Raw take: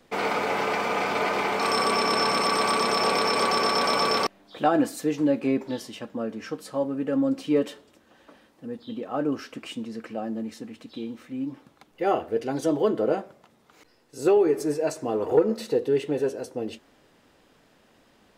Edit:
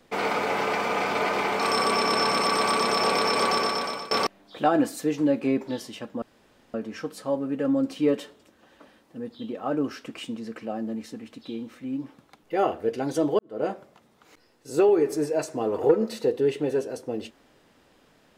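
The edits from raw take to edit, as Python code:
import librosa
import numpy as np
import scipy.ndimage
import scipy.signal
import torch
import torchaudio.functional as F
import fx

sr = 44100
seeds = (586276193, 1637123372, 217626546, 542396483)

y = fx.edit(x, sr, fx.fade_out_to(start_s=3.53, length_s=0.58, floor_db=-20.5),
    fx.insert_room_tone(at_s=6.22, length_s=0.52),
    fx.fade_in_span(start_s=12.87, length_s=0.29, curve='qua'), tone=tone)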